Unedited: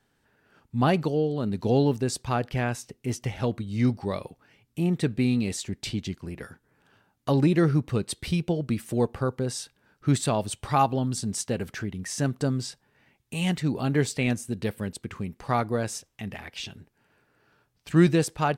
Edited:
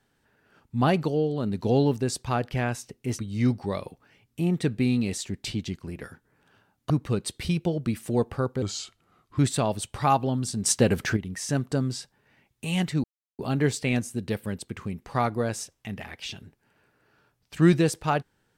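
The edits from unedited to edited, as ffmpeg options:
ffmpeg -i in.wav -filter_complex "[0:a]asplit=8[link_01][link_02][link_03][link_04][link_05][link_06][link_07][link_08];[link_01]atrim=end=3.192[link_09];[link_02]atrim=start=3.578:end=7.292[link_10];[link_03]atrim=start=7.728:end=9.454[link_11];[link_04]atrim=start=9.45:end=10.08,asetpts=PTS-STARTPTS,asetrate=36162,aresample=44100[link_12];[link_05]atrim=start=10.076:end=11.352[link_13];[link_06]atrim=start=11.348:end=11.862,asetpts=PTS-STARTPTS,volume=8dB[link_14];[link_07]atrim=start=11.858:end=13.73,asetpts=PTS-STARTPTS,afade=type=out:start_time=1.868:duration=0.004:curve=hsin,apad=pad_dur=0.35[link_15];[link_08]atrim=start=13.73,asetpts=PTS-STARTPTS,afade=type=in:duration=0.004:curve=hsin[link_16];[link_09][link_10]acrossfade=duration=0.004:curve1=hsin:curve2=hsin[link_17];[link_17][link_11]acrossfade=duration=0.004:curve1=hsin:curve2=hsin[link_18];[link_18][link_12]acrossfade=duration=0.004:curve1=hsin:curve2=hsin[link_19];[link_19][link_13]acrossfade=duration=0.004:curve1=hsin:curve2=hsin[link_20];[link_20][link_14]acrossfade=duration=0.004:curve1=hsin:curve2=hsin[link_21];[link_15][link_16]concat=n=2:v=0:a=1[link_22];[link_21][link_22]acrossfade=duration=0.004:curve1=hsin:curve2=hsin" out.wav

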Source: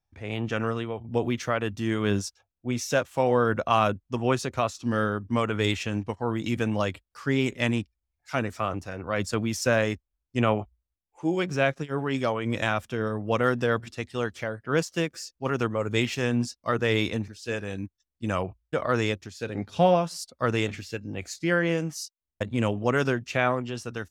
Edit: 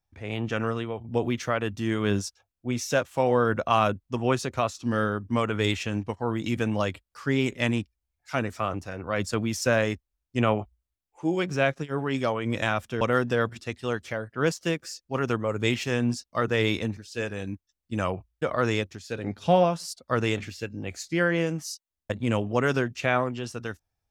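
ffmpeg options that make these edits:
ffmpeg -i in.wav -filter_complex "[0:a]asplit=2[link_01][link_02];[link_01]atrim=end=13.012[link_03];[link_02]atrim=start=13.318[link_04];[link_03][link_04]acrossfade=duration=0.004:curve1=hsin:curve2=hsin" out.wav

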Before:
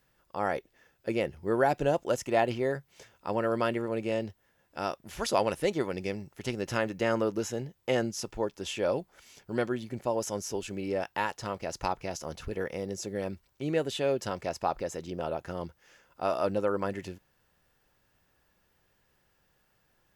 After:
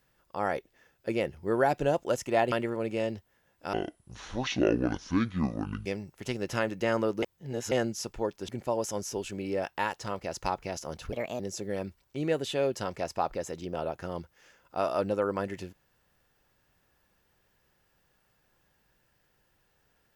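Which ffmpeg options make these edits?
ffmpeg -i in.wav -filter_complex "[0:a]asplit=9[link_01][link_02][link_03][link_04][link_05][link_06][link_07][link_08][link_09];[link_01]atrim=end=2.522[link_10];[link_02]atrim=start=3.638:end=4.854[link_11];[link_03]atrim=start=4.85:end=6.04,asetpts=PTS-STARTPTS,asetrate=24696,aresample=44100,atrim=end_sample=93712,asetpts=PTS-STARTPTS[link_12];[link_04]atrim=start=6.036:end=7.412[link_13];[link_05]atrim=start=7.408:end=7.902,asetpts=PTS-STARTPTS,areverse[link_14];[link_06]atrim=start=7.898:end=8.672[link_15];[link_07]atrim=start=9.868:end=12.514[link_16];[link_08]atrim=start=12.51:end=12.85,asetpts=PTS-STARTPTS,asetrate=55566,aresample=44100[link_17];[link_09]atrim=start=12.846[link_18];[link_10][link_11]acrossfade=duration=0.004:curve1=hsin:curve2=hsin[link_19];[link_19][link_12]acrossfade=duration=0.004:curve1=hsin:curve2=hsin[link_20];[link_20][link_13]acrossfade=duration=0.004:curve1=hsin:curve2=hsin[link_21];[link_21][link_14]acrossfade=duration=0.004:curve1=hsin:curve2=hsin[link_22];[link_22][link_15]acrossfade=duration=0.004:curve1=hsin:curve2=hsin[link_23];[link_23][link_16]acrossfade=duration=0.004:curve1=hsin:curve2=hsin[link_24];[link_24][link_17]acrossfade=duration=0.004:curve1=hsin:curve2=hsin[link_25];[link_25][link_18]acrossfade=duration=0.004:curve1=hsin:curve2=hsin" out.wav

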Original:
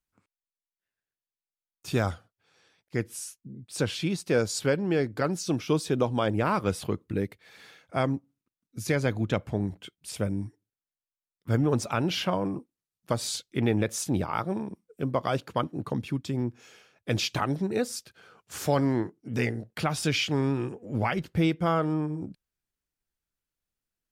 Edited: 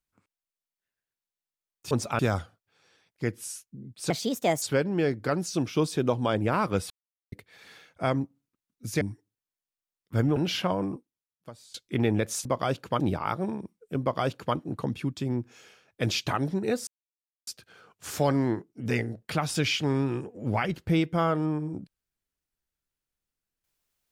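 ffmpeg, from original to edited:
ffmpeg -i in.wav -filter_complex "[0:a]asplit=13[link_01][link_02][link_03][link_04][link_05][link_06][link_07][link_08][link_09][link_10][link_11][link_12][link_13];[link_01]atrim=end=1.912[link_14];[link_02]atrim=start=11.708:end=11.992[link_15];[link_03]atrim=start=1.908:end=3.824[link_16];[link_04]atrim=start=3.82:end=4.55,asetpts=PTS-STARTPTS,asetrate=61740,aresample=44100[link_17];[link_05]atrim=start=4.546:end=6.83,asetpts=PTS-STARTPTS,afade=type=out:start_time=2.28:duration=0.004:curve=hsin[link_18];[link_06]atrim=start=6.83:end=7.25,asetpts=PTS-STARTPTS,volume=0[link_19];[link_07]atrim=start=7.25:end=8.942,asetpts=PTS-STARTPTS,afade=type=in:duration=0.004:curve=hsin[link_20];[link_08]atrim=start=10.358:end=11.712[link_21];[link_09]atrim=start=11.988:end=13.37,asetpts=PTS-STARTPTS,afade=type=out:start_time=0.532:duration=0.85:curve=qua:silence=0.0707946[link_22];[link_10]atrim=start=13.37:end=14.082,asetpts=PTS-STARTPTS,afade=type=in:duration=0.004:curve=hsin:silence=0.0707946[link_23];[link_11]atrim=start=15.088:end=15.642[link_24];[link_12]atrim=start=14.078:end=17.95,asetpts=PTS-STARTPTS,afade=type=out:start_time=3.868:duration=0.004:curve=hsin,apad=pad_dur=0.6[link_25];[link_13]atrim=start=17.95,asetpts=PTS-STARTPTS,afade=type=in:duration=0.004:curve=hsin[link_26];[link_14][link_15]acrossfade=duration=0.004:curve1=hsin:curve2=hsin[link_27];[link_27][link_16]acrossfade=duration=0.004:curve1=hsin:curve2=hsin[link_28];[link_28][link_17]acrossfade=duration=0.004:curve1=hsin:curve2=hsin[link_29];[link_18][link_19][link_20]concat=n=3:v=0:a=1[link_30];[link_29][link_30]acrossfade=duration=0.004:curve1=hsin:curve2=hsin[link_31];[link_31][link_21]acrossfade=duration=0.004:curve1=hsin:curve2=hsin[link_32];[link_22][link_23]concat=n=2:v=0:a=1[link_33];[link_32][link_33]acrossfade=duration=0.004:curve1=hsin:curve2=hsin[link_34];[link_34][link_24]acrossfade=duration=0.004:curve1=hsin:curve2=hsin[link_35];[link_25][link_26]concat=n=2:v=0:a=1[link_36];[link_35][link_36]acrossfade=duration=0.004:curve1=hsin:curve2=hsin" out.wav

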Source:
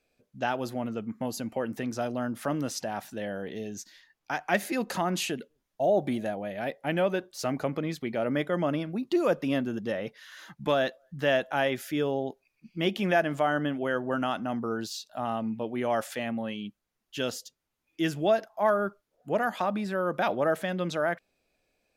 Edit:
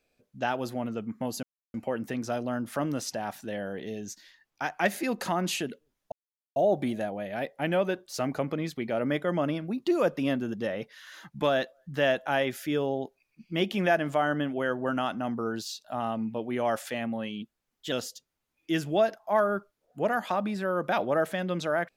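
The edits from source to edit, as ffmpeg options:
ffmpeg -i in.wav -filter_complex "[0:a]asplit=5[link_01][link_02][link_03][link_04][link_05];[link_01]atrim=end=1.43,asetpts=PTS-STARTPTS,afade=type=out:start_time=1.426:duration=0.004:curve=hsin,apad=pad_dur=0.31[link_06];[link_02]atrim=start=1.43:end=5.81,asetpts=PTS-STARTPTS,afade=type=in:duration=0.004:curve=hsin,afade=type=out:start_time=4.376:duration=0.004:curve=hsin,apad=pad_dur=0.44[link_07];[link_03]atrim=start=5.81:end=16.674,asetpts=PTS-STARTPTS,afade=type=in:duration=0.004:curve=hsin[link_08];[link_04]atrim=start=16.67:end=17.22,asetpts=PTS-STARTPTS,asetrate=48510,aresample=44100[link_09];[link_05]atrim=start=17.216[link_10];[link_06][link_07][link_08]concat=n=3:v=0:a=1[link_11];[link_11][link_09]acrossfade=duration=0.004:curve1=hsin:curve2=hsin[link_12];[link_12][link_10]acrossfade=duration=0.004:curve1=hsin:curve2=hsin" out.wav

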